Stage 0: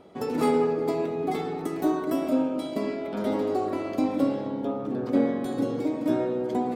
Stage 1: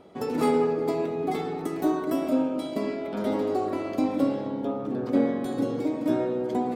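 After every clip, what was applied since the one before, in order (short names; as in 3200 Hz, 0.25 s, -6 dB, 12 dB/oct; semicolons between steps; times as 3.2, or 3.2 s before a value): nothing audible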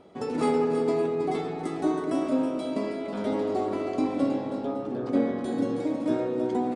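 tapped delay 0.321/0.558 s -8.5/-15 dB; downsampling 22050 Hz; gain -1.5 dB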